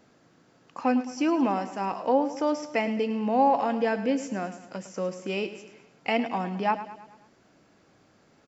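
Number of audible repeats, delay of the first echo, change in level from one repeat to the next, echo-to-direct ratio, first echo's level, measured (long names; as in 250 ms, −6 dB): 4, 107 ms, −6.0 dB, −11.5 dB, −13.0 dB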